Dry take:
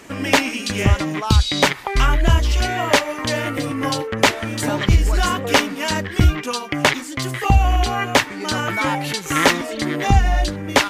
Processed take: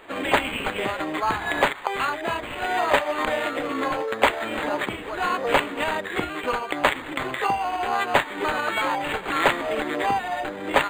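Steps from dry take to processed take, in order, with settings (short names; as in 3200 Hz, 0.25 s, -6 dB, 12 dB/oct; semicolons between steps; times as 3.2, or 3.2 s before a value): recorder AGC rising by 36 dB/s; HPF 440 Hz 12 dB/oct; high shelf 11000 Hz -10.5 dB; harmoniser +4 st -11 dB; decimation joined by straight lines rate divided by 8×; gain -2 dB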